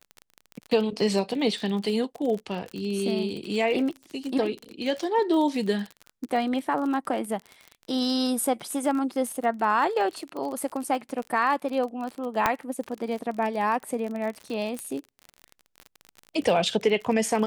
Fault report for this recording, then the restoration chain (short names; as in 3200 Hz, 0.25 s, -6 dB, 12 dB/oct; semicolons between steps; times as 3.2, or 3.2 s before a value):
crackle 34/s -31 dBFS
12.46 pop -7 dBFS
14.79 pop -18 dBFS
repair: de-click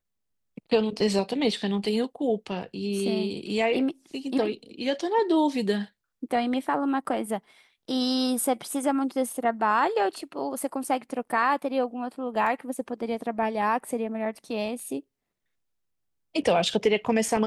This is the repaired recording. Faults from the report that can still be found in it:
12.46 pop
14.79 pop